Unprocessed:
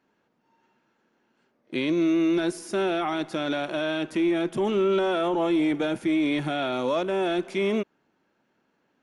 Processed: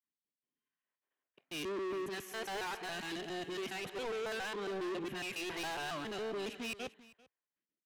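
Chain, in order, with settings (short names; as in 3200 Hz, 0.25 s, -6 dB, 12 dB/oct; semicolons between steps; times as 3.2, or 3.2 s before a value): local time reversal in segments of 0.158 s; HPF 69 Hz 12 dB/oct; gate with hold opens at -60 dBFS; resonant high shelf 3300 Hz -7.5 dB, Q 1.5; varispeed +15%; phaser stages 2, 0.67 Hz, lowest notch 180–1100 Hz; soft clip -37.5 dBFS, distortion -5 dB; echo 0.394 s -14 dB; three-band expander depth 70%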